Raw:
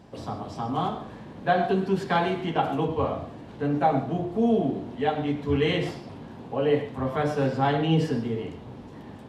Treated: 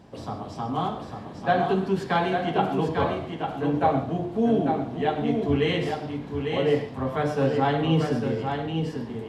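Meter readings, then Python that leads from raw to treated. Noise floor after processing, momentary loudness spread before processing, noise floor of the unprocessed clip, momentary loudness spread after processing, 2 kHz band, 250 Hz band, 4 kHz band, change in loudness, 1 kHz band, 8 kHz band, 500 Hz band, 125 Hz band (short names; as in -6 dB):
-39 dBFS, 15 LU, -43 dBFS, 9 LU, +1.0 dB, +1.0 dB, +1.0 dB, +0.5 dB, +1.0 dB, n/a, +1.0 dB, +1.0 dB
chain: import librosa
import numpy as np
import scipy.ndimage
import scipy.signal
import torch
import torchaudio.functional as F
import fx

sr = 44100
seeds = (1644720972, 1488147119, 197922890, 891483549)

y = x + 10.0 ** (-5.5 / 20.0) * np.pad(x, (int(848 * sr / 1000.0), 0))[:len(x)]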